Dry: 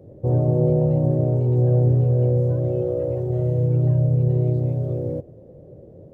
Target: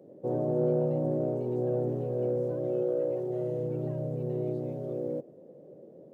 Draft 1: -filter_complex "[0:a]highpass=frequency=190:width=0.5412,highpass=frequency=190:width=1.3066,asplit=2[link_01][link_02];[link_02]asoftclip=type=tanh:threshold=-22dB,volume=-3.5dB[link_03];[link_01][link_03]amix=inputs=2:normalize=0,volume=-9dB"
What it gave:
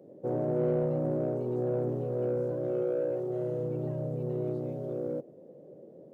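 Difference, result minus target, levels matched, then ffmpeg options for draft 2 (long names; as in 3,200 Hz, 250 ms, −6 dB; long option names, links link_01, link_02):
soft clipping: distortion +13 dB
-filter_complex "[0:a]highpass=frequency=190:width=0.5412,highpass=frequency=190:width=1.3066,asplit=2[link_01][link_02];[link_02]asoftclip=type=tanh:threshold=-12.5dB,volume=-3.5dB[link_03];[link_01][link_03]amix=inputs=2:normalize=0,volume=-9dB"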